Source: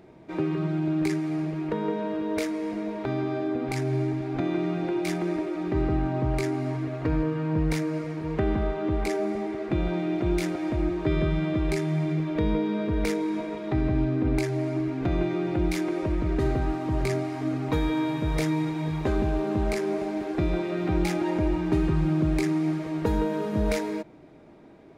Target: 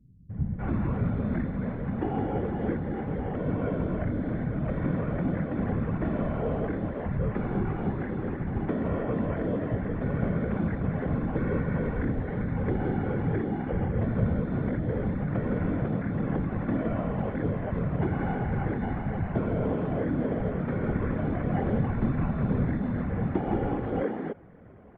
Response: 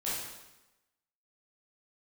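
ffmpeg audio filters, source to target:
-filter_complex "[0:a]acrossover=split=720[link_01][link_02];[link_02]alimiter=level_in=6dB:limit=-24dB:level=0:latency=1:release=288,volume=-6dB[link_03];[link_01][link_03]amix=inputs=2:normalize=0,acrusher=samples=11:mix=1:aa=0.000001,afftfilt=real='hypot(re,im)*cos(2*PI*random(0))':imag='hypot(re,im)*sin(2*PI*random(1))':win_size=512:overlap=0.75,highpass=frequency=230:width_type=q:width=0.5412,highpass=frequency=230:width_type=q:width=1.307,lowpass=frequency=2200:width_type=q:width=0.5176,lowpass=frequency=2200:width_type=q:width=0.7071,lowpass=frequency=2200:width_type=q:width=1.932,afreqshift=-160,acrossover=split=190[link_04][link_05];[link_05]adelay=300[link_06];[link_04][link_06]amix=inputs=2:normalize=0,volume=8.5dB"

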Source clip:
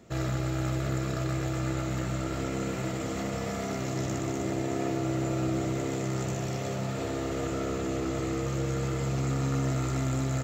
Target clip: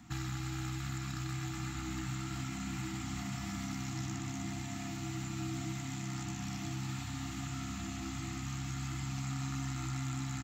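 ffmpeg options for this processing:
ffmpeg -i in.wav -filter_complex "[0:a]asplit=2[link_01][link_02];[link_02]adelay=1224,volume=-8dB,highshelf=frequency=4000:gain=-27.6[link_03];[link_01][link_03]amix=inputs=2:normalize=0,acrossover=split=380|2200|6100[link_04][link_05][link_06][link_07];[link_04]acompressor=threshold=-39dB:ratio=4[link_08];[link_05]acompressor=threshold=-47dB:ratio=4[link_09];[link_06]acompressor=threshold=-50dB:ratio=4[link_10];[link_07]acompressor=threshold=-55dB:ratio=4[link_11];[link_08][link_09][link_10][link_11]amix=inputs=4:normalize=0,afftfilt=real='re*(1-between(b*sr/4096,330,690))':imag='im*(1-between(b*sr/4096,330,690))':win_size=4096:overlap=0.75,volume=1dB" out.wav

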